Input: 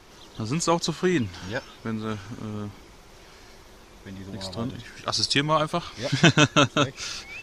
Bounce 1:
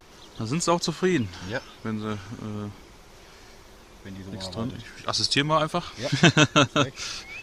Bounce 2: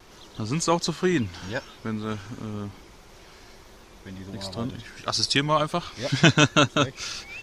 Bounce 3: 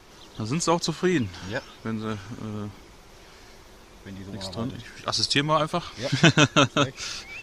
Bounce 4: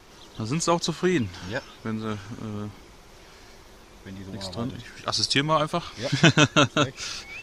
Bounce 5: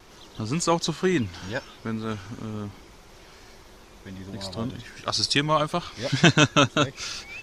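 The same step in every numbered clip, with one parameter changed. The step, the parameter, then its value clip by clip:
vibrato, rate: 0.37, 1.4, 11, 4.6, 2.1 Hz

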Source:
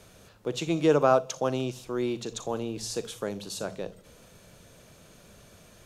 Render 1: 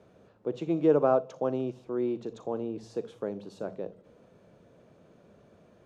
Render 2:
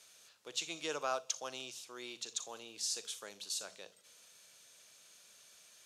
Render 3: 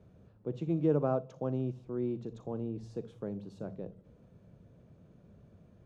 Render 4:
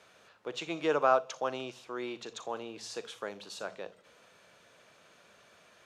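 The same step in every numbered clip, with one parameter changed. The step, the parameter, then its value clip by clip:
band-pass, frequency: 360, 6200, 130, 1600 Hz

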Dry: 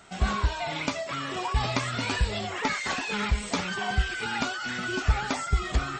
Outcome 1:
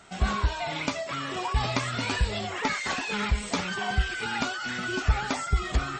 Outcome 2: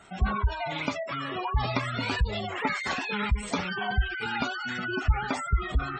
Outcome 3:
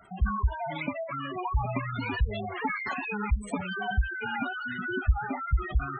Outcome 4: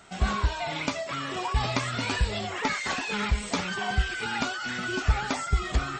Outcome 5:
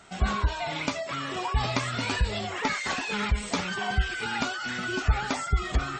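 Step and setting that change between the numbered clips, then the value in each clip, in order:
spectral gate, under each frame's peak: -45, -20, -10, -60, -35 dB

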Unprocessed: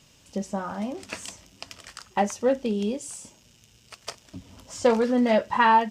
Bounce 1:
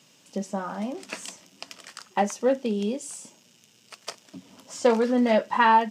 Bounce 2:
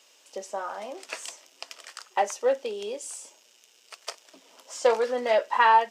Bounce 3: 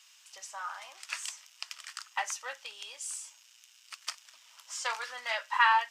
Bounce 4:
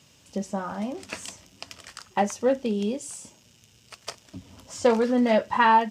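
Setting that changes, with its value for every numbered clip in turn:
HPF, cutoff: 160, 410, 1100, 61 Hz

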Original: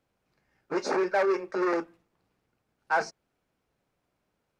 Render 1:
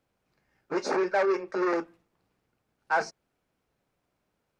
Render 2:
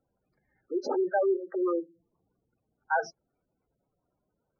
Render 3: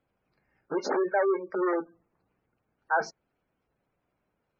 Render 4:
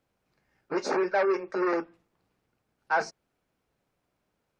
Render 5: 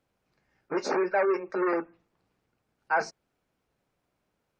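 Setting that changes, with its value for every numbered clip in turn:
spectral gate, under each frame's peak: -60, -10, -20, -45, -35 dB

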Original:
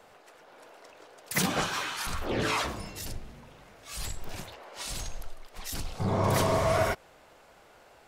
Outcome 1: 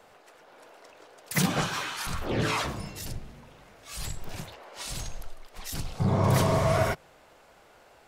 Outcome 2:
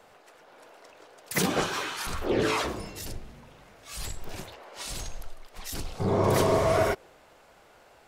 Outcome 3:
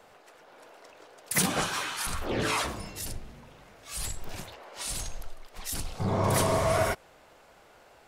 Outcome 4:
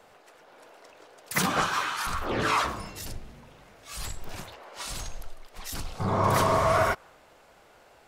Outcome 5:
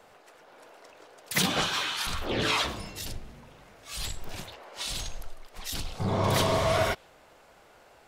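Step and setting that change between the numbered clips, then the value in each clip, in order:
dynamic EQ, frequency: 140, 390, 9800, 1200, 3500 Hz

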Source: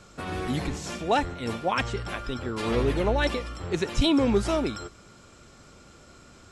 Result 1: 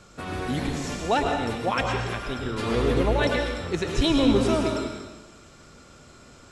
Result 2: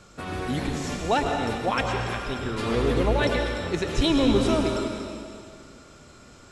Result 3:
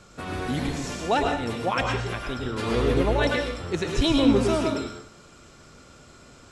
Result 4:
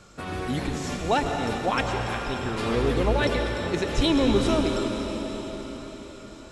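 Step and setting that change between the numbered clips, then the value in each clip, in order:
plate-style reverb, RT60: 1.1, 2.2, 0.5, 5.3 s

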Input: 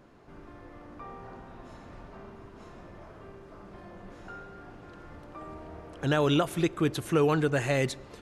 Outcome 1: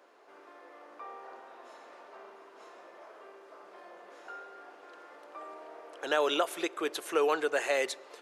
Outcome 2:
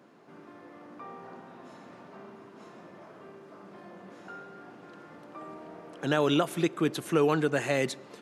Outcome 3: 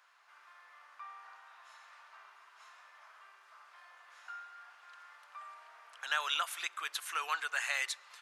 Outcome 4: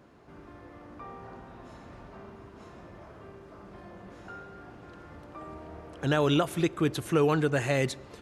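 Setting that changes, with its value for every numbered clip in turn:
HPF, cutoff: 420, 160, 1100, 42 Hz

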